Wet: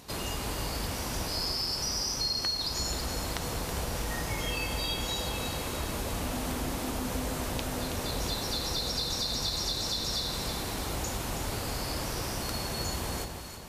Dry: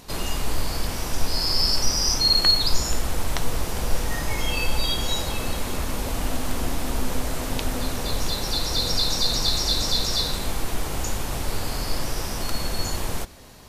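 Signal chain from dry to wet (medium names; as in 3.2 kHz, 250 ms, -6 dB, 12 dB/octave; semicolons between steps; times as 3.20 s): high-pass 50 Hz; compression, threshold -25 dBFS, peak gain reduction 10.5 dB; echo whose repeats swap between lows and highs 162 ms, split 1.1 kHz, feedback 72%, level -5.5 dB; trim -4 dB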